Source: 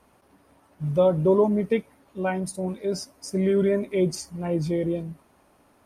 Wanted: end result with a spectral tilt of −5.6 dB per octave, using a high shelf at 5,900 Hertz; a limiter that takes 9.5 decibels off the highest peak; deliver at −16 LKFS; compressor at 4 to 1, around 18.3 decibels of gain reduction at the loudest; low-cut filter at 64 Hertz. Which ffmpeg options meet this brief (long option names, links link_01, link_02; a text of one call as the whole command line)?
ffmpeg -i in.wav -af "highpass=64,highshelf=frequency=5900:gain=5,acompressor=threshold=-38dB:ratio=4,volume=28dB,alimiter=limit=-7.5dB:level=0:latency=1" out.wav